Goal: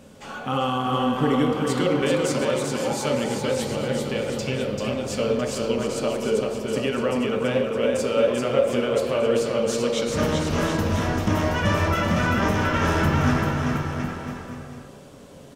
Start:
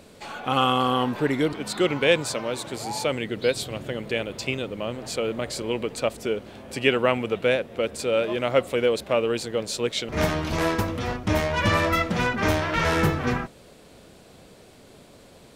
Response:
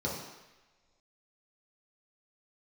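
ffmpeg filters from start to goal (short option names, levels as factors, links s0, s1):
-filter_complex "[0:a]alimiter=limit=0.2:level=0:latency=1:release=135,aecho=1:1:390|721.5|1003|1243|1446:0.631|0.398|0.251|0.158|0.1,asplit=2[s0][s1];[1:a]atrim=start_sample=2205,lowshelf=f=240:g=-8.5[s2];[s1][s2]afir=irnorm=-1:irlink=0,volume=0.422[s3];[s0][s3]amix=inputs=2:normalize=0"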